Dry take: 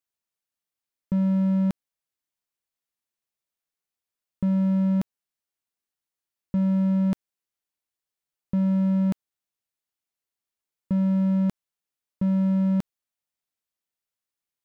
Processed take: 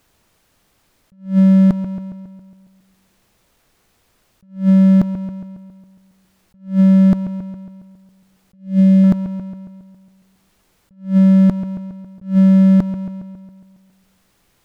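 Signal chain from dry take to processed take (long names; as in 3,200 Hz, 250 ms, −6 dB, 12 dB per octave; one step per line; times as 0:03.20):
spectral tilt −2.5 dB per octave
on a send: bucket-brigade delay 137 ms, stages 2,048, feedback 46%, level −19.5 dB
on the sum: power curve on the samples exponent 0.7
in parallel at −1 dB: downward compressor, threshold −25 dBFS, peak gain reduction 10.5 dB
0:08.54–0:09.04: on the sum: flat-topped bell 1,100 Hz −11.5 dB 1.2 octaves
level that may rise only so fast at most 190 dB per second
level +3 dB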